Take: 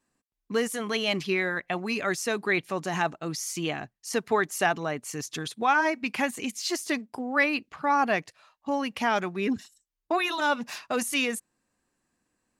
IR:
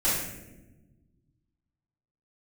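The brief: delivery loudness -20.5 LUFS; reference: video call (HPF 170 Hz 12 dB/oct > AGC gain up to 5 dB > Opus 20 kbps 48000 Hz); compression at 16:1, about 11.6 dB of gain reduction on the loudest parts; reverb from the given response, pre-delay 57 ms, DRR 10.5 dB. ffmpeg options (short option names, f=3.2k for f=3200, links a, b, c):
-filter_complex "[0:a]acompressor=threshold=-30dB:ratio=16,asplit=2[a][b];[1:a]atrim=start_sample=2205,adelay=57[c];[b][c]afir=irnorm=-1:irlink=0,volume=-22.5dB[d];[a][d]amix=inputs=2:normalize=0,highpass=170,dynaudnorm=m=5dB,volume=15.5dB" -ar 48000 -c:a libopus -b:a 20k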